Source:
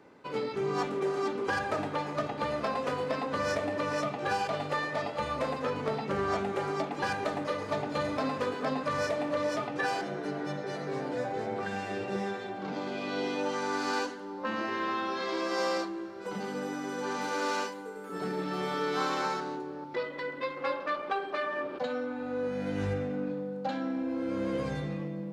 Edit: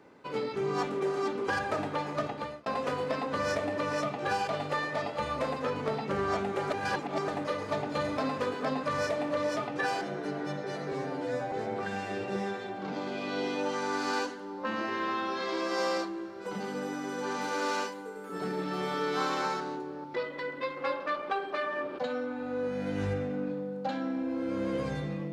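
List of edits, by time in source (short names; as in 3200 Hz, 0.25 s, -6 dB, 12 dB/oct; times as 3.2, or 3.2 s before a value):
2.27–2.66 fade out
6.7–7.28 reverse
10.92–11.32 stretch 1.5×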